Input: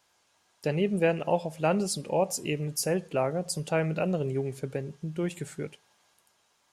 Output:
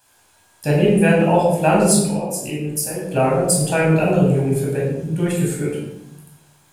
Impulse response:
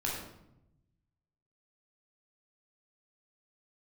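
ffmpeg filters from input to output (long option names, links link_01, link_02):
-filter_complex "[0:a]asettb=1/sr,asplit=3[link_01][link_02][link_03];[link_01]atrim=end=1.944[link_04];[link_02]atrim=start=1.94:end=3.02,asetpts=PTS-STARTPTS,afade=type=in:duration=0.004:curve=qsin,afade=type=out:start_time=1.076:duration=0.004:curve=qsin,acompressor=threshold=-35dB:ratio=6[link_05];[link_03]atrim=start=3.016[link_06];[link_04][link_05]acrossfade=duration=0.004:curve1=hsin:curve2=qsin[link_07];[link_07][link_06]acrossfade=duration=0.004:curve1=qsin:curve2=hsin,aexciter=amount=2.1:drive=8.7:freq=7800[link_08];[1:a]atrim=start_sample=2205[link_09];[link_08][link_09]afir=irnorm=-1:irlink=0,volume=6.5dB"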